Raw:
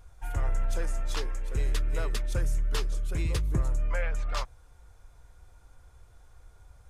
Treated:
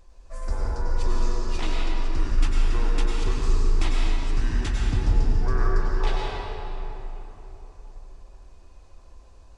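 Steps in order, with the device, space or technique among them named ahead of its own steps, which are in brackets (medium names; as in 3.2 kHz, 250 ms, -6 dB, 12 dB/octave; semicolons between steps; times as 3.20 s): slowed and reverbed (tape speed -28%; reverberation RT60 3.7 s, pre-delay 88 ms, DRR -4 dB)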